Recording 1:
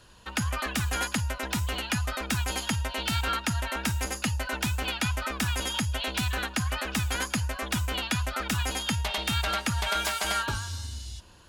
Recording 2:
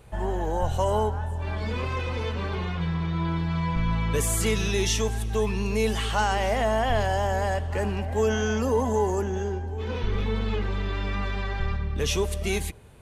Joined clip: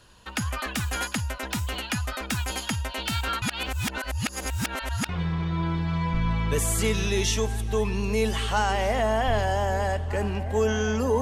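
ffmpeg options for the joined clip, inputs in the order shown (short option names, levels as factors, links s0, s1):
-filter_complex "[0:a]apad=whole_dur=11.21,atrim=end=11.21,asplit=2[s0][s1];[s0]atrim=end=3.422[s2];[s1]atrim=start=3.418:end=5.092,asetpts=PTS-STARTPTS,areverse[s3];[1:a]atrim=start=2.708:end=8.83[s4];[s2][s3]acrossfade=d=0.004:c1=hsin:c2=hsin[s5];[s5][s4]acrossfade=d=0.004:c1=hsin:c2=hsin"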